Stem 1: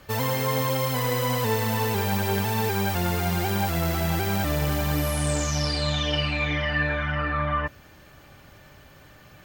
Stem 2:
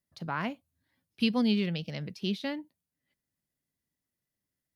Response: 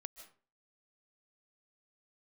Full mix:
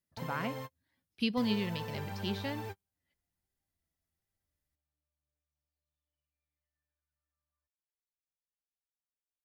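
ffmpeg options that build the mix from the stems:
-filter_complex "[0:a]aemphasis=mode=reproduction:type=cd,volume=0.158,asplit=3[s0][s1][s2];[s0]atrim=end=0.76,asetpts=PTS-STARTPTS,afade=t=out:st=0.756:d=0.004:c=hsin[s3];[s1]atrim=start=0.76:end=1.37,asetpts=PTS-STARTPTS,volume=0[s4];[s2]atrim=start=1.37,asetpts=PTS-STARTPTS,afade=t=in:d=0.004:c=hsin[s5];[s3][s4][s5]concat=n=3:v=0:a=1[s6];[1:a]volume=0.668,asplit=2[s7][s8];[s8]apad=whole_len=416573[s9];[s6][s9]sidechaingate=range=0.00158:threshold=0.00178:ratio=16:detection=peak[s10];[s10][s7]amix=inputs=2:normalize=0,asubboost=boost=6.5:cutoff=65"

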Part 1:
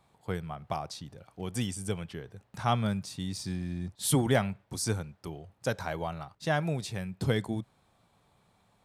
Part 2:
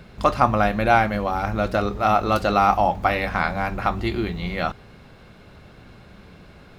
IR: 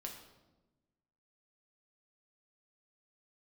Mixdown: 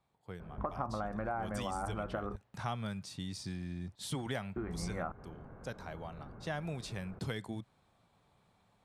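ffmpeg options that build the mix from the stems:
-filter_complex "[0:a]volume=1.78,afade=t=in:st=0.64:d=0.62:silence=0.354813,afade=t=out:st=4.48:d=0.62:silence=0.398107,afade=t=in:st=6.11:d=0.72:silence=0.398107[s0];[1:a]lowpass=f=1400:w=0.5412,lowpass=f=1400:w=1.3066,acompressor=threshold=0.0794:ratio=6,adelay=400,volume=0.631,asplit=3[s1][s2][s3];[s1]atrim=end=2.36,asetpts=PTS-STARTPTS,afade=t=out:st=2.356:d=0.004:c=hsin[s4];[s2]atrim=start=2.36:end=4.56,asetpts=PTS-STARTPTS,volume=0[s5];[s3]atrim=start=4.56,asetpts=PTS-STARTPTS,afade=t=in:d=0.004:c=hsin[s6];[s4][s5][s6]concat=n=3:v=0:a=1[s7];[s0][s7]amix=inputs=2:normalize=0,acrossover=split=1000|7600[s8][s9][s10];[s8]acompressor=threshold=0.0141:ratio=4[s11];[s9]acompressor=threshold=0.00891:ratio=4[s12];[s10]acompressor=threshold=0.00316:ratio=4[s13];[s11][s12][s13]amix=inputs=3:normalize=0,highshelf=f=8800:g=-8"

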